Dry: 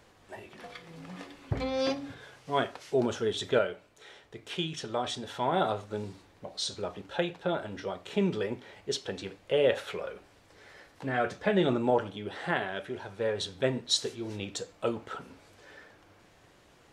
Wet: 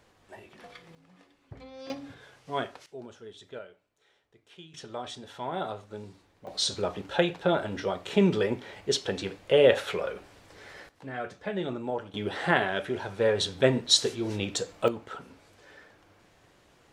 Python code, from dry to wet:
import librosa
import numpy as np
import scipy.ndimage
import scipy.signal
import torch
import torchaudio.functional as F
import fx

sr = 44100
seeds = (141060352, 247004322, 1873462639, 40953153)

y = fx.gain(x, sr, db=fx.steps((0.0, -3.0), (0.95, -15.0), (1.9, -3.0), (2.86, -16.0), (4.74, -5.5), (6.47, 5.5), (10.89, -6.5), (12.14, 6.0), (14.88, -1.0)))